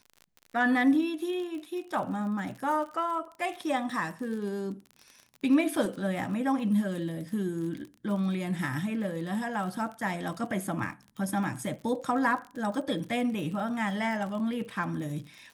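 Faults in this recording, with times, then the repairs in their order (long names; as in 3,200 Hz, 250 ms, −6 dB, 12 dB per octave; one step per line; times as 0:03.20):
surface crackle 42 per second −37 dBFS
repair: click removal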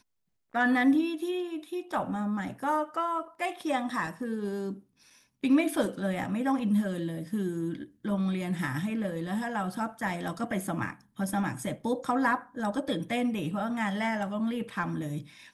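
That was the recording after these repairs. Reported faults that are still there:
none of them is left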